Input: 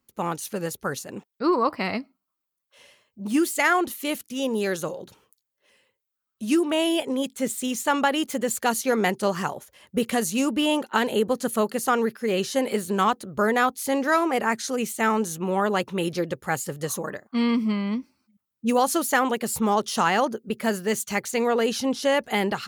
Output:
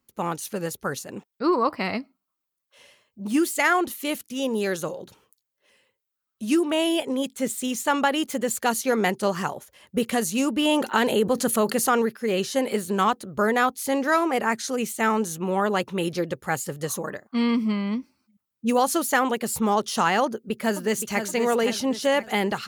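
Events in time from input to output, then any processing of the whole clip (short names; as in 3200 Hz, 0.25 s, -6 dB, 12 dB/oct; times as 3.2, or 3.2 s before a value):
10.65–12.02 fast leveller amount 50%
20.24–21.27 echo throw 0.52 s, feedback 40%, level -8 dB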